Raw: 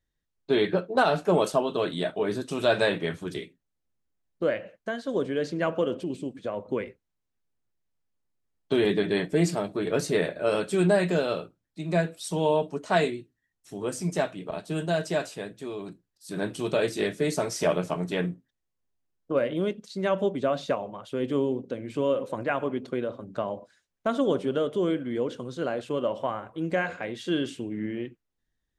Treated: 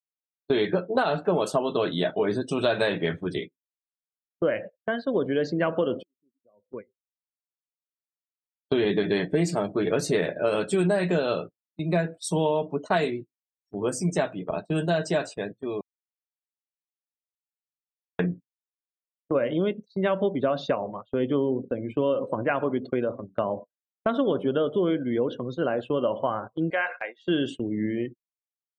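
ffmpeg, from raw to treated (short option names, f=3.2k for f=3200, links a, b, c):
-filter_complex "[0:a]asettb=1/sr,asplit=3[a][b][c];[a]atrim=end=26.704[d];[b]atrim=start=26.7:end=27.21,asetpts=PTS-STARTPTS,afade=t=in:d=0.004:c=qsin,afade=t=out:st=0.506:d=0.004:c=qsin,highpass=720[e];[c]atrim=start=27.206[f];[d][e]acrossfade=d=0.004:c1=hsin:c2=qsin[g];[g][f]acrossfade=d=0.004:c1=qsin:c2=hsin,asplit=4[h][i][j][k];[h]atrim=end=6.03,asetpts=PTS-STARTPTS,afade=t=out:st=6.026:d=0.004:c=hsin[l];[i]atrim=start=6.03:end=15.81,asetpts=PTS-STARTPTS,afade=t=in:d=2.87,afade=t=out:st=9.776:d=0.004:c=hsin[m];[j]atrim=start=15.81:end=18.19,asetpts=PTS-STARTPTS,volume=0[n];[k]atrim=start=18.19,asetpts=PTS-STARTPTS,afade=t=in:d=0.004:c=hsin[o];[l][m][n][o]concat=n=4:v=0:a=1,afftdn=nr=34:nf=-45,agate=range=-19dB:threshold=-39dB:ratio=16:detection=peak,acompressor=threshold=-24dB:ratio=6,volume=4.5dB"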